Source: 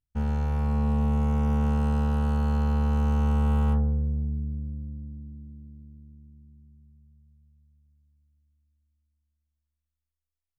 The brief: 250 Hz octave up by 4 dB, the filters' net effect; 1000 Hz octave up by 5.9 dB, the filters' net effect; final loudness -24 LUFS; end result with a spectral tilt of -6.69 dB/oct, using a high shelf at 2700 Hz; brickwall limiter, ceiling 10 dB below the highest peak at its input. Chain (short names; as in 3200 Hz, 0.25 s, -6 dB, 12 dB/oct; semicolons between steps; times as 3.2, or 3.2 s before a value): bell 250 Hz +4.5 dB; bell 1000 Hz +7.5 dB; high shelf 2700 Hz -3.5 dB; gain +8.5 dB; limiter -16 dBFS